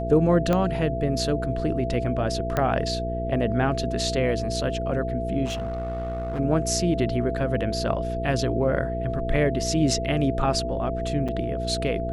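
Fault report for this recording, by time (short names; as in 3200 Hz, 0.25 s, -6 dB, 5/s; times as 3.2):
hum 60 Hz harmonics 8 -30 dBFS
tone 670 Hz -29 dBFS
0.53 pop -11 dBFS
2.57 pop -11 dBFS
5.45–6.4 clipped -25.5 dBFS
11.28–11.29 gap 5.9 ms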